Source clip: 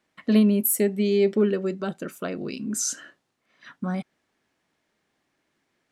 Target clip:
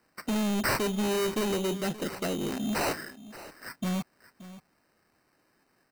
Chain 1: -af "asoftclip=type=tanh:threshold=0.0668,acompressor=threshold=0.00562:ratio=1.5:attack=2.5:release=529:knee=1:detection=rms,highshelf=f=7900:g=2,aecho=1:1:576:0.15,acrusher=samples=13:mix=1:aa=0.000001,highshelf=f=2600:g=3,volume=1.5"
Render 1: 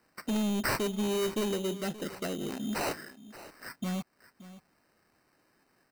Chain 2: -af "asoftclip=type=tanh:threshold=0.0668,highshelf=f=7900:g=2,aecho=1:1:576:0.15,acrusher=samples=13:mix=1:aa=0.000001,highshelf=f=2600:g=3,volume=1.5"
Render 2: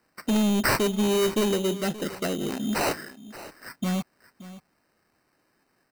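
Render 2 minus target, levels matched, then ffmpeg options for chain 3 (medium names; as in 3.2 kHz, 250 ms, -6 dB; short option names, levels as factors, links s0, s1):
saturation: distortion -4 dB
-af "asoftclip=type=tanh:threshold=0.0316,highshelf=f=7900:g=2,aecho=1:1:576:0.15,acrusher=samples=13:mix=1:aa=0.000001,highshelf=f=2600:g=3,volume=1.5"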